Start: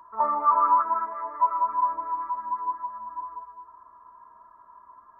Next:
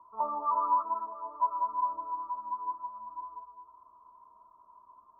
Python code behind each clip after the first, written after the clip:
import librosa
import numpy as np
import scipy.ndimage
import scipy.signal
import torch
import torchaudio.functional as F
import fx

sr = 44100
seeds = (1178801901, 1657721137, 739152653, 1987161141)

y = scipy.signal.sosfilt(scipy.signal.ellip(4, 1.0, 60, 1100.0, 'lowpass', fs=sr, output='sos'), x)
y = F.gain(torch.from_numpy(y), -6.0).numpy()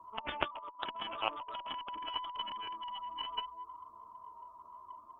y = fx.chorus_voices(x, sr, voices=2, hz=0.75, base_ms=11, depth_ms=2.4, mix_pct=55)
y = fx.over_compress(y, sr, threshold_db=-40.0, ratio=-0.5)
y = fx.cheby_harmonics(y, sr, harmonics=(3, 4), levels_db=(-7, -42), full_scale_db=-27.5)
y = F.gain(torch.from_numpy(y), 13.5).numpy()